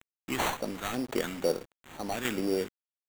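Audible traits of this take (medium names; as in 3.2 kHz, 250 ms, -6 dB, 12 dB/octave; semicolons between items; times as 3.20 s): tremolo saw down 0.89 Hz, depth 50%; a quantiser's noise floor 8-bit, dither none; phasing stages 2, 2.1 Hz, lowest notch 510–2200 Hz; aliases and images of a low sample rate 5.1 kHz, jitter 0%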